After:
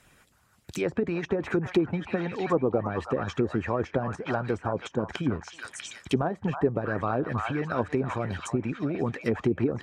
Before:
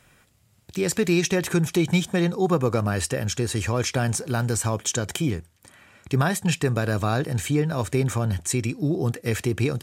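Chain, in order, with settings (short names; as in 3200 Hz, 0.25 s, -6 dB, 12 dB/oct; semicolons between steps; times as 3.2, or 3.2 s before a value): delay with a stepping band-pass 0.322 s, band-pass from 1100 Hz, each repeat 0.7 oct, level -2 dB; harmonic-percussive split harmonic -13 dB; treble ducked by the level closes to 690 Hz, closed at -23 dBFS; gain +2.5 dB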